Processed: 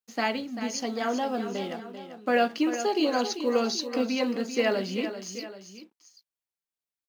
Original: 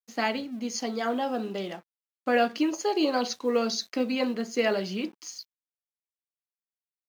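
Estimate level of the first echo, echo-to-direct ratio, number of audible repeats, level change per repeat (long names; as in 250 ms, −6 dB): −10.5 dB, −9.5 dB, 2, −5.5 dB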